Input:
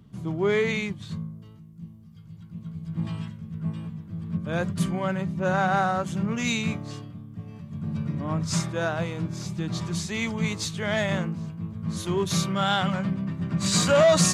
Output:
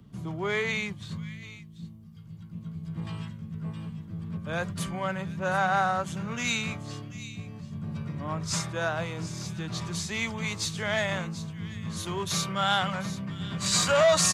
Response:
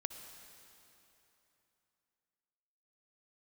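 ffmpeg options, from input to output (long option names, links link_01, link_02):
-filter_complex "[0:a]acrossover=split=150|560|1700[link_01][link_02][link_03][link_04];[link_01]asoftclip=type=tanh:threshold=-33.5dB[link_05];[link_02]acompressor=threshold=-39dB:ratio=6[link_06];[link_04]aecho=1:1:737:0.211[link_07];[link_05][link_06][link_03][link_07]amix=inputs=4:normalize=0"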